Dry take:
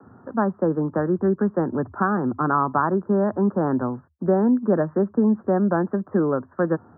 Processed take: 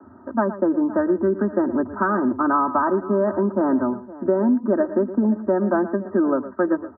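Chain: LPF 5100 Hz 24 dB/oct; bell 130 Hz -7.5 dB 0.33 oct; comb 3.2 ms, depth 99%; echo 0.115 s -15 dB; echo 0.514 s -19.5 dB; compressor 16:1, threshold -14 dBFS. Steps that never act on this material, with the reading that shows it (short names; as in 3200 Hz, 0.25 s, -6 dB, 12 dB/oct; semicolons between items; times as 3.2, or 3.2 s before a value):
LPF 5100 Hz: input band ends at 1700 Hz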